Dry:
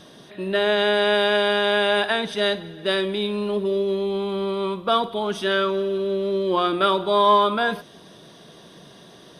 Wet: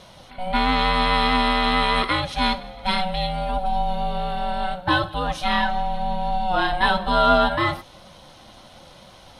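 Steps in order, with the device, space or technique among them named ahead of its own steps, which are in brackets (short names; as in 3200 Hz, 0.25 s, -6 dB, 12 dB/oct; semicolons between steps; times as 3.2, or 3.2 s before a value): alien voice (ring modulator 370 Hz; flange 0.99 Hz, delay 1.7 ms, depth 1.4 ms, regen -62%); gain +7.5 dB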